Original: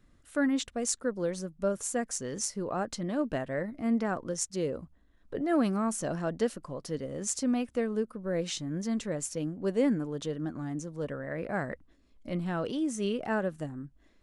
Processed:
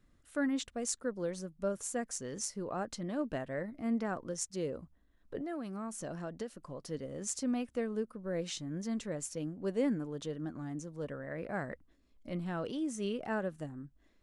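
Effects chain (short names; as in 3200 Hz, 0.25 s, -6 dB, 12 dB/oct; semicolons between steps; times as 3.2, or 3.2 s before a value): 5.38–6.86 compressor 6:1, threshold -32 dBFS, peak gain reduction 10 dB; gain -5 dB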